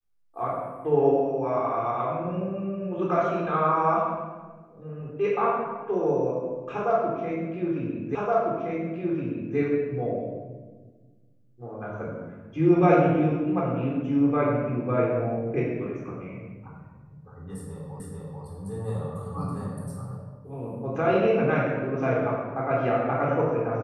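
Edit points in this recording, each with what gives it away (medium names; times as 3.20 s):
8.15 s: repeat of the last 1.42 s
18.00 s: repeat of the last 0.44 s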